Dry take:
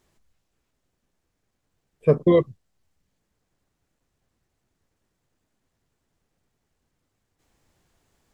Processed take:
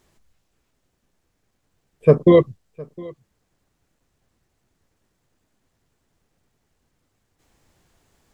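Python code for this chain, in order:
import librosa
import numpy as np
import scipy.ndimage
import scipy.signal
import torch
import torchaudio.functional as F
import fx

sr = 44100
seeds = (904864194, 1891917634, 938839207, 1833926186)

y = x + 10.0 ** (-23.0 / 20.0) * np.pad(x, (int(710 * sr / 1000.0), 0))[:len(x)]
y = y * 10.0 ** (5.0 / 20.0)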